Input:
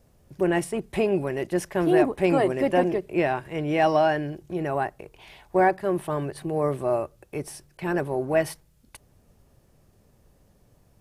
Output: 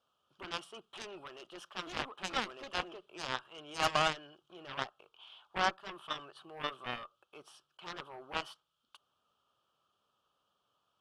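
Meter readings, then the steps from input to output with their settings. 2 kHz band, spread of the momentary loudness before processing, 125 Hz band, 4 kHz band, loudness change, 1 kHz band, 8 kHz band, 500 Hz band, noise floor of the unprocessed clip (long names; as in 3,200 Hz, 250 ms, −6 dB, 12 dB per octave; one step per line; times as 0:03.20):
−7.5 dB, 11 LU, −20.5 dB, +3.0 dB, −13.0 dB, −10.5 dB, −7.5 dB, −21.0 dB, −61 dBFS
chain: pair of resonant band-passes 2,000 Hz, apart 1.3 octaves
harmonic generator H 7 −13 dB, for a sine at −23 dBFS
level +7 dB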